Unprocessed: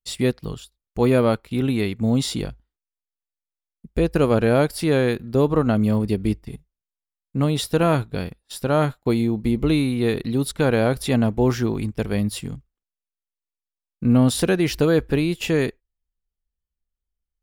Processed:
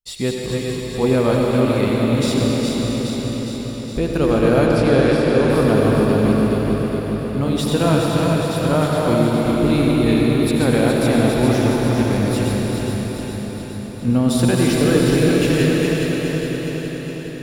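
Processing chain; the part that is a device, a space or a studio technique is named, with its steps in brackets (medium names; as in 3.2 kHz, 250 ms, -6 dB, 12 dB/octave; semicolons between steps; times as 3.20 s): backward echo that repeats 207 ms, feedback 79%, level -4.5 dB; cathedral (reverberation RT60 4.8 s, pre-delay 71 ms, DRR -1 dB); 4.66–5.50 s: low-pass 7.5 kHz 12 dB/octave; trim -1.5 dB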